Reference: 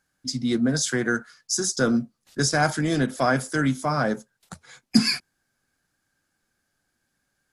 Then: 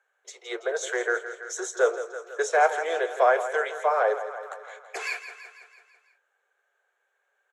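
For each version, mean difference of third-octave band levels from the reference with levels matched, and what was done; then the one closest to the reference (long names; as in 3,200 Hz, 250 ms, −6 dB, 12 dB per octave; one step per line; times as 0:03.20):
12.5 dB: Butterworth high-pass 400 Hz 96 dB per octave
repeating echo 165 ms, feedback 57%, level −12 dB
dynamic equaliser 1,400 Hz, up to −5 dB, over −39 dBFS, Q 1.3
moving average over 9 samples
level +5 dB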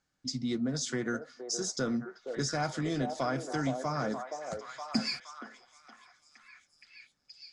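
4.5 dB: notch filter 1,600 Hz, Q 8.2
downward compressor 2 to 1, threshold −29 dBFS, peak gain reduction 9.5 dB
low-pass filter 7,300 Hz 24 dB per octave
on a send: echo through a band-pass that steps 470 ms, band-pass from 560 Hz, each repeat 0.7 octaves, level −2.5 dB
on the sum: level −4 dB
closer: second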